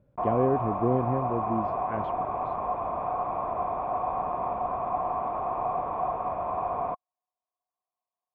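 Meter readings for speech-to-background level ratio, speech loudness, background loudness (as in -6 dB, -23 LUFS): 1.0 dB, -29.5 LUFS, -30.5 LUFS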